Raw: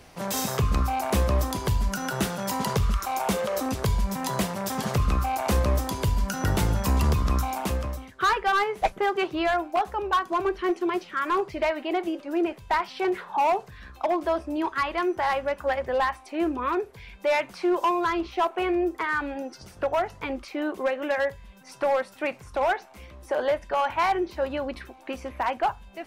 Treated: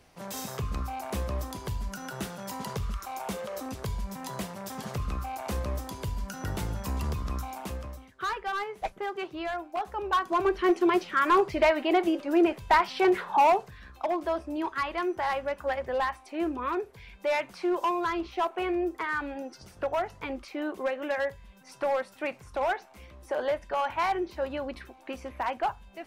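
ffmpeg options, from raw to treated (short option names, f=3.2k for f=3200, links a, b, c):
-af "volume=3dB,afade=t=in:st=9.71:d=1.15:silence=0.251189,afade=t=out:st=13.34:d=0.47:silence=0.446684"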